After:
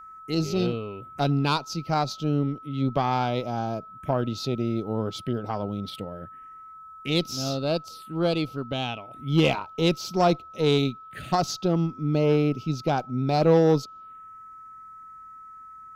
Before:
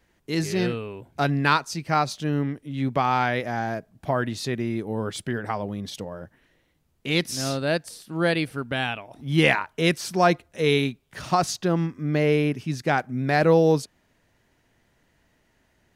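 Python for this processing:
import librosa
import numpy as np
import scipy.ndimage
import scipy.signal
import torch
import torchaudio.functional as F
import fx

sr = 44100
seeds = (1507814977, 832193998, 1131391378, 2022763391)

y = fx.env_phaser(x, sr, low_hz=580.0, high_hz=1800.0, full_db=-26.5)
y = fx.cheby_harmonics(y, sr, harmonics=(6,), levels_db=(-25,), full_scale_db=-8.0)
y = y + 10.0 ** (-42.0 / 20.0) * np.sin(2.0 * np.pi * 1300.0 * np.arange(len(y)) / sr)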